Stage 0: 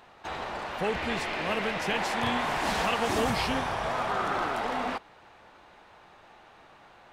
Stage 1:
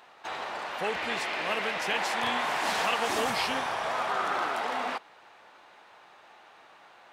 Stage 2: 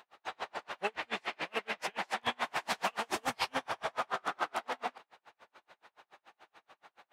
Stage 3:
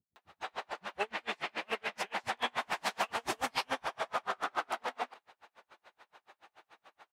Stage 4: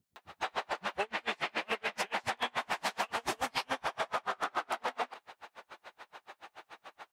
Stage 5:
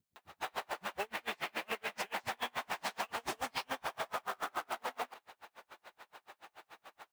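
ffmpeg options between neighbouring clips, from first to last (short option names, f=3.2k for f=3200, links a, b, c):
-af "highpass=f=590:p=1,volume=1.5dB"
-af "aeval=exprs='val(0)*pow(10,-39*(0.5-0.5*cos(2*PI*7*n/s))/20)':c=same"
-filter_complex "[0:a]acrossover=split=190[a][b];[b]adelay=160[c];[a][c]amix=inputs=2:normalize=0"
-af "acompressor=threshold=-39dB:ratio=6,volume=8.5dB"
-af "acrusher=bits=3:mode=log:mix=0:aa=0.000001,volume=-4.5dB"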